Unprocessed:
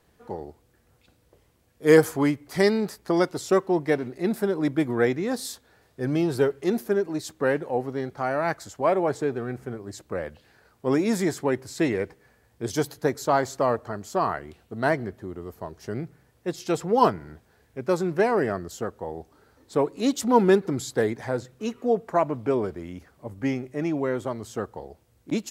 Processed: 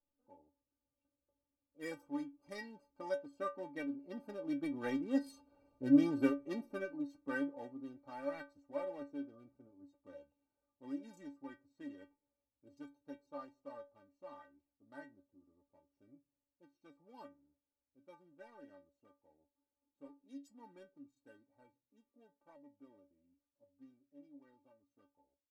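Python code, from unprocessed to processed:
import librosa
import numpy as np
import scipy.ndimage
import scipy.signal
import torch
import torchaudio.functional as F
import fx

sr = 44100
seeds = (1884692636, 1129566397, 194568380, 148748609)

y = fx.wiener(x, sr, points=25)
y = fx.doppler_pass(y, sr, speed_mps=11, closest_m=5.5, pass_at_s=5.78)
y = fx.stiff_resonator(y, sr, f0_hz=280.0, decay_s=0.24, stiffness=0.008)
y = y * 10.0 ** (10.0 / 20.0)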